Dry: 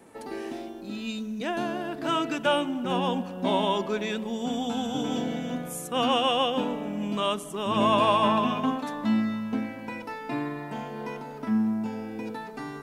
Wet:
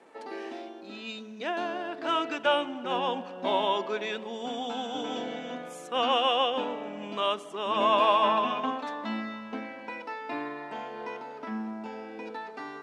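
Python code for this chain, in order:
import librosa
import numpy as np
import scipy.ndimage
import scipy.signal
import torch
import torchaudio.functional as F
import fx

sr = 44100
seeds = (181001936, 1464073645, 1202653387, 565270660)

y = fx.bandpass_edges(x, sr, low_hz=400.0, high_hz=4700.0)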